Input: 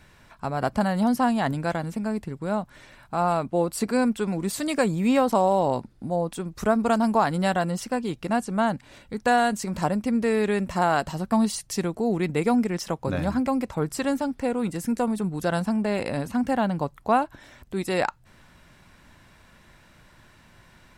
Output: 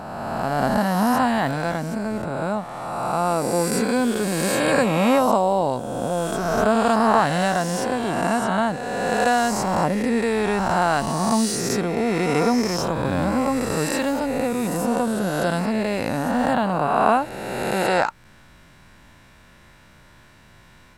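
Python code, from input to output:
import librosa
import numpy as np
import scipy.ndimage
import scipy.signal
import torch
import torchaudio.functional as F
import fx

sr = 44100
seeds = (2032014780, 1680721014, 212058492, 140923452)

y = fx.spec_swells(x, sr, rise_s=2.19)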